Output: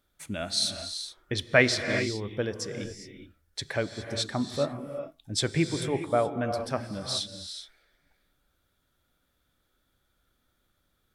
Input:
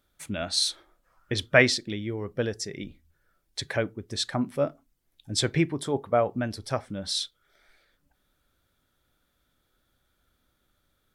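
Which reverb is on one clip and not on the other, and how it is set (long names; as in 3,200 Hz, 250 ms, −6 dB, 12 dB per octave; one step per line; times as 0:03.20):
reverb whose tail is shaped and stops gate 440 ms rising, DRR 7 dB
level −2 dB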